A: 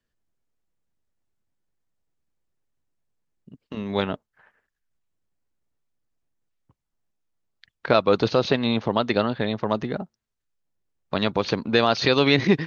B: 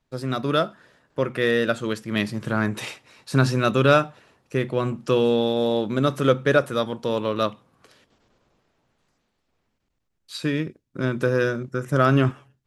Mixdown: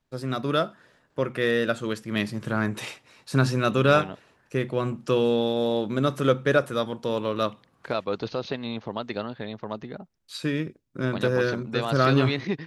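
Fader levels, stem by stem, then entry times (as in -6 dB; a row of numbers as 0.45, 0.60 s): -9.5, -2.5 dB; 0.00, 0.00 s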